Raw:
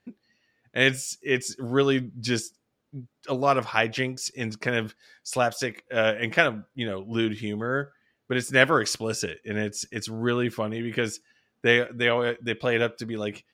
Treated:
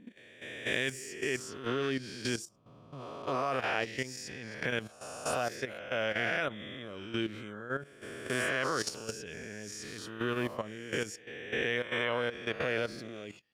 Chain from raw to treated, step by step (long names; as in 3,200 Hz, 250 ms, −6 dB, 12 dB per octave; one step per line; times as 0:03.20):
peak hold with a rise ahead of every peak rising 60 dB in 1.24 s
output level in coarse steps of 12 dB
level −7.5 dB